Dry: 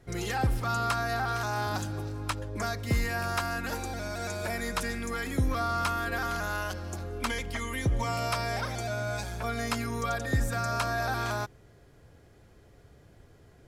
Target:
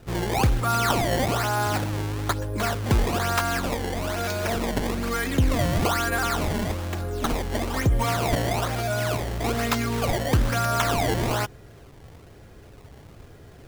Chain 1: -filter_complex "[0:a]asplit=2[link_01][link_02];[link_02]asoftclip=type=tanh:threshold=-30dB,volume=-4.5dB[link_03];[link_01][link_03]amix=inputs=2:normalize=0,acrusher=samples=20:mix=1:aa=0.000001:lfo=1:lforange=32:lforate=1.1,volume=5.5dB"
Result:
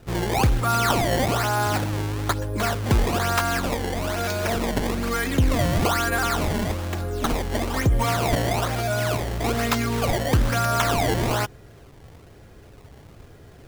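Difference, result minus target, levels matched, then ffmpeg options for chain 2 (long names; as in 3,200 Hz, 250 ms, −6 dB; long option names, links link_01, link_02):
soft clipping: distortion −6 dB
-filter_complex "[0:a]asplit=2[link_01][link_02];[link_02]asoftclip=type=tanh:threshold=-41dB,volume=-4.5dB[link_03];[link_01][link_03]amix=inputs=2:normalize=0,acrusher=samples=20:mix=1:aa=0.000001:lfo=1:lforange=32:lforate=1.1,volume=5.5dB"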